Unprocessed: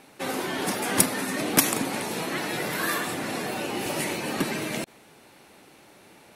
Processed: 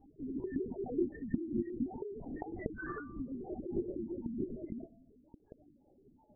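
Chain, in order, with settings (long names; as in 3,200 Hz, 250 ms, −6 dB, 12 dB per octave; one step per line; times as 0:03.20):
in parallel at −0.5 dB: downward compressor 12 to 1, threshold −42 dBFS, peak gain reduction 28.5 dB
on the sum: reverb reduction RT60 1.1 s
flanger 0.37 Hz, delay 6.4 ms, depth 2.6 ms, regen +36%
dynamic equaliser 370 Hz, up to +6 dB, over −48 dBFS, Q 3.4
on a send at −19 dB: convolution reverb RT60 2.3 s, pre-delay 80 ms
on the sum: harmonic generator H 7 −24 dB, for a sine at −4.5 dBFS
parametric band 220 Hz +5.5 dB 0.61 octaves
spectral peaks only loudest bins 2
hum removal 167.9 Hz, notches 9
linear-prediction vocoder at 8 kHz whisper
level +2.5 dB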